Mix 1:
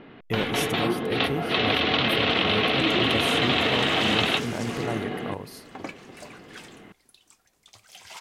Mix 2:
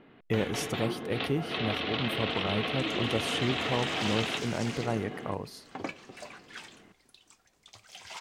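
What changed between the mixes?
first sound -9.5 dB; master: add peaking EQ 12 kHz -10 dB 0.66 oct

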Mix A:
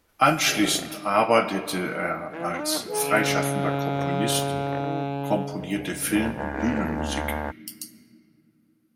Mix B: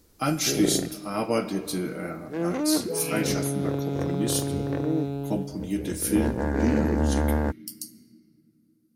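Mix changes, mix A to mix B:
first sound +9.0 dB; second sound: send off; master: add high-order bell 1.4 kHz -11 dB 2.8 oct

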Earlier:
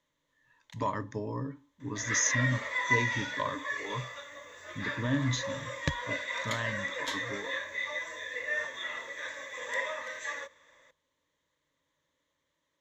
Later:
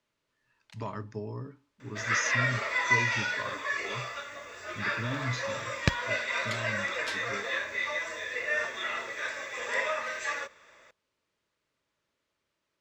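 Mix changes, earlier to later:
speech -4.0 dB; second sound +6.5 dB; master: remove rippled EQ curve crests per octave 1.1, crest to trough 10 dB

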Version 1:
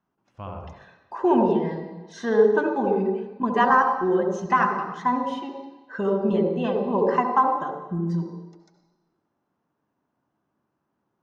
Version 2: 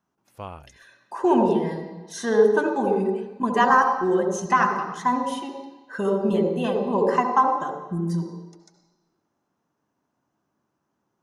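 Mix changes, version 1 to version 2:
background: send off; master: remove distance through air 170 m

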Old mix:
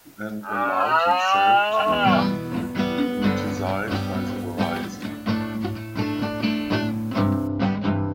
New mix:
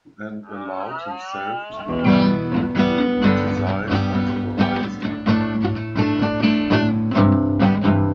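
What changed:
first sound -10.5 dB; second sound +6.5 dB; master: add distance through air 110 m

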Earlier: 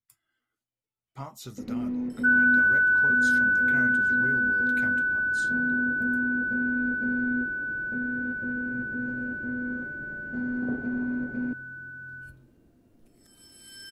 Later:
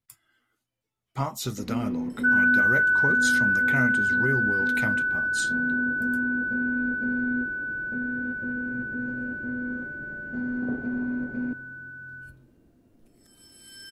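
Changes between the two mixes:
speech +10.5 dB; first sound: send +6.0 dB

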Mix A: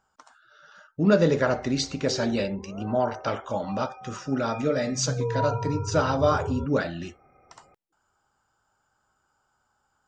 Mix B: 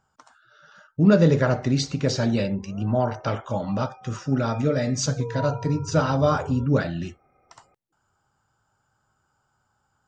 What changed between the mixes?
speech: add peaking EQ 120 Hz +10 dB 1.4 oct; background -4.5 dB

